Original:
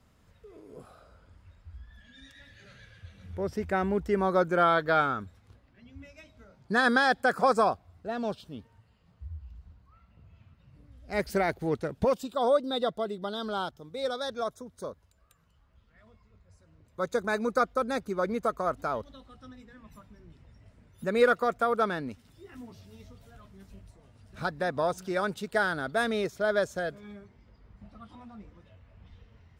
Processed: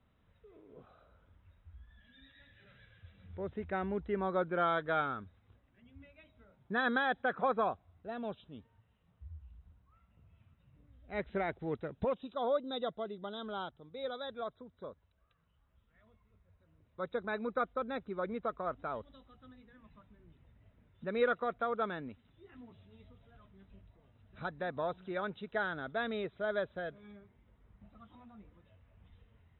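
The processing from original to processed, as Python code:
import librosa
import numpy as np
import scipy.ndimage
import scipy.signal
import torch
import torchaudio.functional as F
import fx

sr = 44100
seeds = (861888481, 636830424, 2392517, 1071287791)

y = fx.brickwall_lowpass(x, sr, high_hz=4000.0)
y = y * 10.0 ** (-8.0 / 20.0)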